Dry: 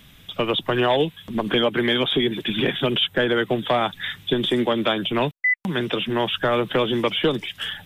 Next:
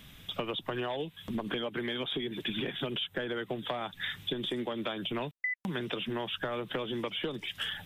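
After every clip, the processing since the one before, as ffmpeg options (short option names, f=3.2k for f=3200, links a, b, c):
-af "acompressor=threshold=-28dB:ratio=12,volume=-3dB"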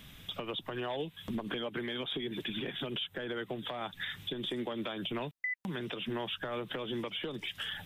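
-af "alimiter=level_in=3dB:limit=-24dB:level=0:latency=1:release=171,volume=-3dB"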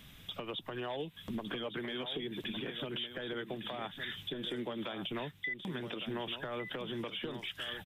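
-af "aecho=1:1:1158:0.335,volume=-2.5dB"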